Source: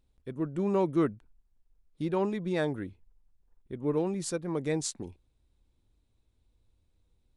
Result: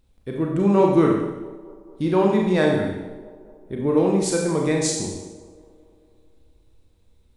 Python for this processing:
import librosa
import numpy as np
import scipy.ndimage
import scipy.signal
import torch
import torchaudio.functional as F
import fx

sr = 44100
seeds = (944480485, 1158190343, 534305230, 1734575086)

y = fx.echo_wet_bandpass(x, sr, ms=222, feedback_pct=61, hz=480.0, wet_db=-18.0)
y = fx.rev_schroeder(y, sr, rt60_s=0.93, comb_ms=29, drr_db=-0.5)
y = y * 10.0 ** (8.0 / 20.0)